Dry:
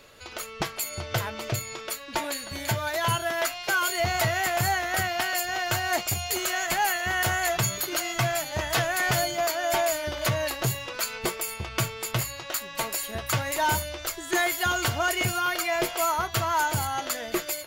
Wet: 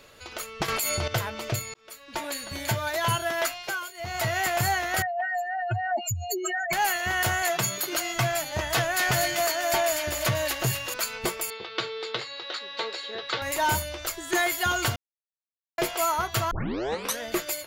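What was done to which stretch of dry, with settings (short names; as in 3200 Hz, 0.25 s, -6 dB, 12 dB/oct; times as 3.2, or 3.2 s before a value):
0.68–1.08 fast leveller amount 100%
1.74–2.42 fade in
3.48–4.38 dip -18.5 dB, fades 0.45 s
5.02–6.73 spectral contrast raised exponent 3.9
7.42–7.95 HPF 140 Hz 24 dB/oct
8.72–10.94 thin delay 0.244 s, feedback 47%, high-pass 2000 Hz, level -3 dB
11.5–13.42 speaker cabinet 380–4500 Hz, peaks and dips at 450 Hz +9 dB, 640 Hz -7 dB, 1000 Hz -4 dB, 2500 Hz -4 dB, 3900 Hz +9 dB
14.96–15.78 mute
16.51 tape start 0.70 s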